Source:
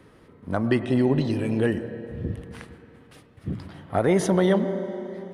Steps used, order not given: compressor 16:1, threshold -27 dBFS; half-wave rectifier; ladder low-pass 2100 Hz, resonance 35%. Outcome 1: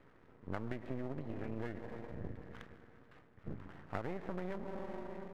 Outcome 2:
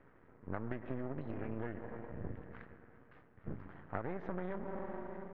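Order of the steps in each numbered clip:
compressor > ladder low-pass > half-wave rectifier; half-wave rectifier > compressor > ladder low-pass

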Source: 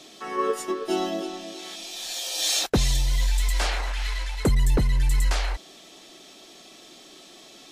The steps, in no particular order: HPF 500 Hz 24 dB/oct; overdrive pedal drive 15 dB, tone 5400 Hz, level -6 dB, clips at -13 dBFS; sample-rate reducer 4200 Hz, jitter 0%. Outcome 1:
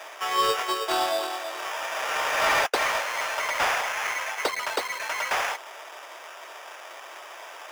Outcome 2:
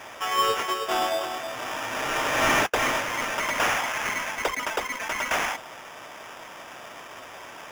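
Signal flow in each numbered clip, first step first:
sample-rate reducer > HPF > overdrive pedal; HPF > sample-rate reducer > overdrive pedal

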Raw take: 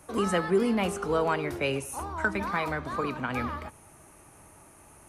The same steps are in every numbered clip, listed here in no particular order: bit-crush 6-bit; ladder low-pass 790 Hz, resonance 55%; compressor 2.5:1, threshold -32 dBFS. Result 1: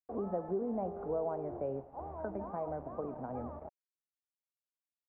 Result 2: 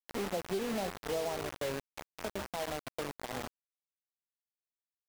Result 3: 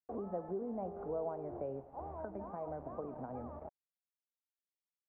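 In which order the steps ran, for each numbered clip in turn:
bit-crush > ladder low-pass > compressor; ladder low-pass > bit-crush > compressor; bit-crush > compressor > ladder low-pass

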